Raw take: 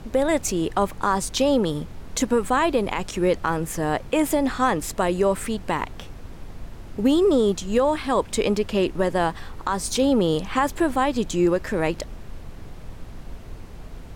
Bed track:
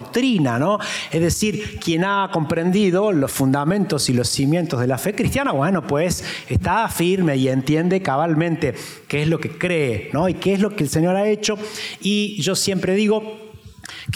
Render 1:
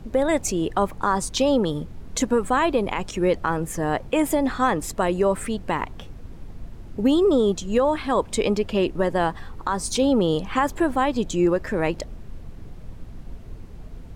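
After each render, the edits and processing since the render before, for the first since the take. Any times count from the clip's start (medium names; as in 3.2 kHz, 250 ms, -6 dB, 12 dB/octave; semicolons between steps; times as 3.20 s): noise reduction 7 dB, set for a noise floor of -40 dBFS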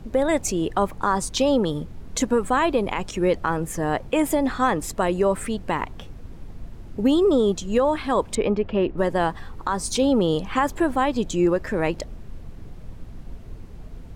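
8.35–8.98 s: low-pass 2.2 kHz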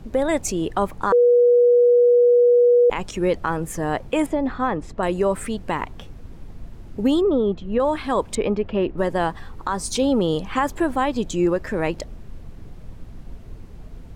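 1.12–2.90 s: bleep 484 Hz -11 dBFS; 4.26–5.03 s: tape spacing loss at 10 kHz 24 dB; 7.21–7.80 s: distance through air 400 m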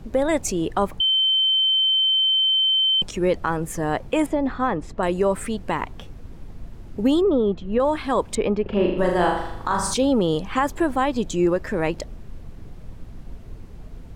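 1.00–3.02 s: bleep 3.09 kHz -16 dBFS; 8.62–9.94 s: flutter echo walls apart 6.7 m, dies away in 0.76 s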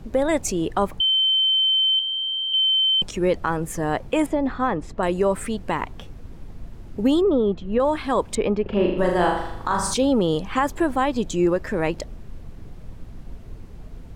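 1.99–2.54 s: robot voice 84.4 Hz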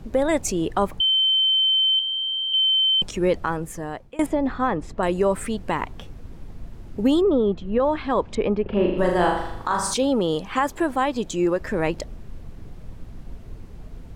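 3.35–4.19 s: fade out, to -22.5 dB; 7.70–8.94 s: distance through air 130 m; 9.63–11.61 s: bass shelf 180 Hz -7.5 dB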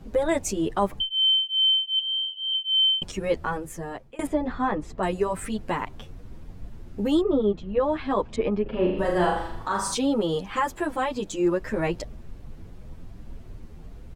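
endless flanger 8.5 ms +2.6 Hz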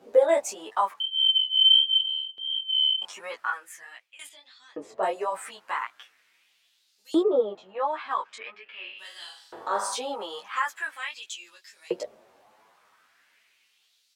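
chorus 1.5 Hz, delay 16 ms, depth 5.3 ms; LFO high-pass saw up 0.42 Hz 420–5300 Hz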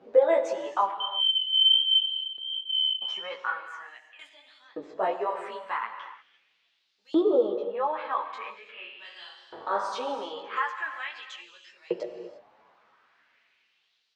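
distance through air 200 m; gated-style reverb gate 370 ms flat, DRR 7.5 dB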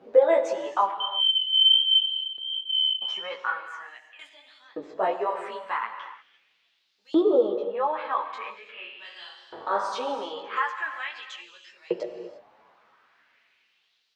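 trim +2 dB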